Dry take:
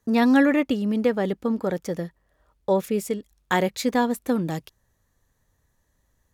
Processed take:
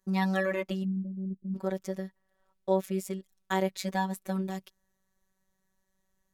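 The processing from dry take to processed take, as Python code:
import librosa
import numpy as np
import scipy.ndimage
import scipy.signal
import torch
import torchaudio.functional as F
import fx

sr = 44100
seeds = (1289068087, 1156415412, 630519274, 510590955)

y = fx.cheby2_lowpass(x, sr, hz=1500.0, order=4, stop_db=80, at=(0.83, 1.54), fade=0.02)
y = fx.robotise(y, sr, hz=190.0)
y = y * 10.0 ** (-5.0 / 20.0)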